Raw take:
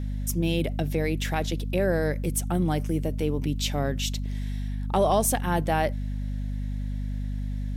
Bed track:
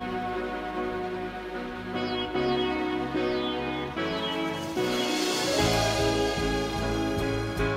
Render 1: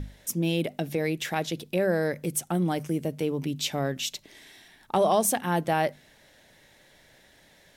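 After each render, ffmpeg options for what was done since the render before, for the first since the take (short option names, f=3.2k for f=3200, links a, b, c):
-af "bandreject=f=50:t=h:w=6,bandreject=f=100:t=h:w=6,bandreject=f=150:t=h:w=6,bandreject=f=200:t=h:w=6,bandreject=f=250:t=h:w=6"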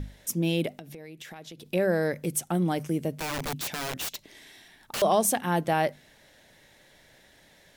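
-filter_complex "[0:a]asettb=1/sr,asplit=3[a][b][c];[a]atrim=end=0.694[d];[b]atrim=start=0.69:end=1.66,asetpts=PTS-STARTPTS,afade=t=in:d=0.004:c=qsin,afade=t=out:st=0.966:d=0.004:c=qsin,acompressor=threshold=-40dB:ratio=8:attack=3.2:release=140:knee=1:detection=peak[e];[c]atrim=start=1.656[f];[d][e]acrossfade=d=0.004:c1=hsin:c2=qsin[g];[g][f]acrossfade=d=0.004:c1=qsin:c2=hsin,asettb=1/sr,asplit=3[h][i][j];[h]atrim=end=3.164[k];[i]atrim=start=3.16:end=5.02,asetpts=PTS-STARTPTS,afade=t=in:d=0.004:c=qsin,afade=t=out:st=1.856:d=0.004:c=qsin,aeval=exprs='(mod(21.1*val(0)+1,2)-1)/21.1':c=same[l];[j]atrim=start=5.016[m];[k][l]acrossfade=d=0.004:c1=hsin:c2=qsin[n];[n][m]acrossfade=d=0.004:c1=qsin:c2=hsin"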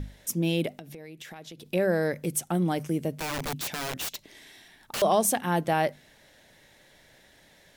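-af anull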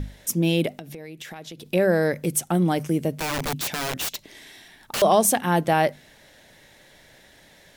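-af "volume=5dB"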